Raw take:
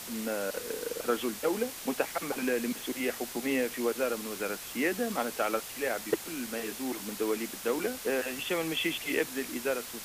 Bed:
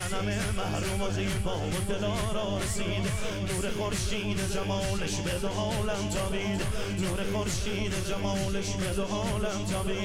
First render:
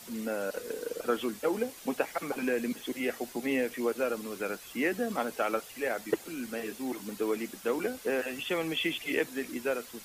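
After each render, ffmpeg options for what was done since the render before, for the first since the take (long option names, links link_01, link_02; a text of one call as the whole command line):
ffmpeg -i in.wav -af "afftdn=noise_reduction=9:noise_floor=-43" out.wav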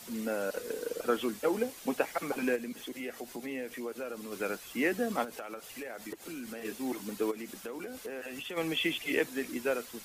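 ffmpeg -i in.wav -filter_complex "[0:a]asplit=3[link_01][link_02][link_03];[link_01]afade=type=out:start_time=2.55:duration=0.02[link_04];[link_02]acompressor=threshold=-41dB:ratio=2:attack=3.2:release=140:knee=1:detection=peak,afade=type=in:start_time=2.55:duration=0.02,afade=type=out:start_time=4.31:duration=0.02[link_05];[link_03]afade=type=in:start_time=4.31:duration=0.02[link_06];[link_04][link_05][link_06]amix=inputs=3:normalize=0,asettb=1/sr,asplit=3[link_07][link_08][link_09];[link_07]atrim=end=5.244[link_10];[link_08]atrim=start=5.24:end=6.65,asetpts=PTS-STARTPTS,afade=type=in:duration=0.004:curve=qsin,afade=type=out:start_time=1.406:duration=0.004:curve=qsin,acompressor=threshold=-37dB:ratio=10:attack=3.2:release=140:knee=1:detection=peak[link_11];[link_09]atrim=start=6.646[link_12];[link_10][link_11]acrossfade=duration=0.004:curve1=hsin:curve2=qsin[link_13];[link_13][link_12]acrossfade=duration=0.004:curve1=qsin:curve2=hsin,asplit=3[link_14][link_15][link_16];[link_14]afade=type=out:start_time=7.3:duration=0.02[link_17];[link_15]acompressor=threshold=-37dB:ratio=6:attack=3.2:release=140:knee=1:detection=peak,afade=type=in:start_time=7.3:duration=0.02,afade=type=out:start_time=8.56:duration=0.02[link_18];[link_16]afade=type=in:start_time=8.56:duration=0.02[link_19];[link_17][link_18][link_19]amix=inputs=3:normalize=0" out.wav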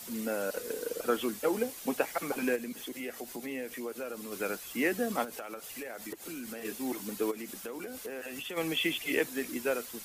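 ffmpeg -i in.wav -af "highshelf=frequency=7800:gain=7" out.wav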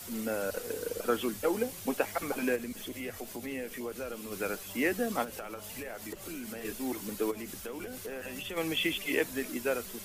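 ffmpeg -i in.wav -i bed.wav -filter_complex "[1:a]volume=-22dB[link_01];[0:a][link_01]amix=inputs=2:normalize=0" out.wav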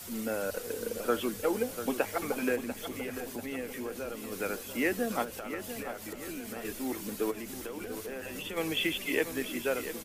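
ffmpeg -i in.wav -filter_complex "[0:a]asplit=2[link_01][link_02];[link_02]adelay=692,lowpass=frequency=4000:poles=1,volume=-10.5dB,asplit=2[link_03][link_04];[link_04]adelay=692,lowpass=frequency=4000:poles=1,volume=0.51,asplit=2[link_05][link_06];[link_06]adelay=692,lowpass=frequency=4000:poles=1,volume=0.51,asplit=2[link_07][link_08];[link_08]adelay=692,lowpass=frequency=4000:poles=1,volume=0.51,asplit=2[link_09][link_10];[link_10]adelay=692,lowpass=frequency=4000:poles=1,volume=0.51,asplit=2[link_11][link_12];[link_12]adelay=692,lowpass=frequency=4000:poles=1,volume=0.51[link_13];[link_01][link_03][link_05][link_07][link_09][link_11][link_13]amix=inputs=7:normalize=0" out.wav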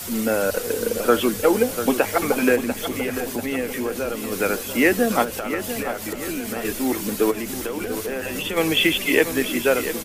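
ffmpeg -i in.wav -af "volume=12dB,alimiter=limit=-3dB:level=0:latency=1" out.wav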